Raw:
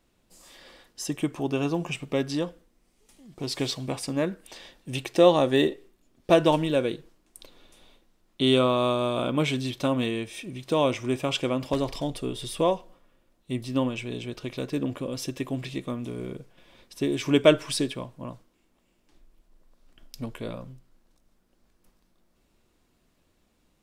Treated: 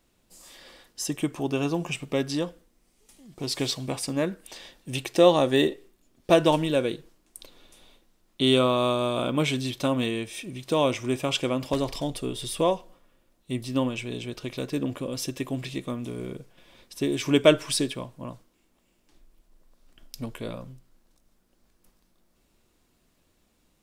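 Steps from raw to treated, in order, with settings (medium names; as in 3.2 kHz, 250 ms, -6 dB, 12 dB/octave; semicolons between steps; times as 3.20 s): treble shelf 4.9 kHz +5 dB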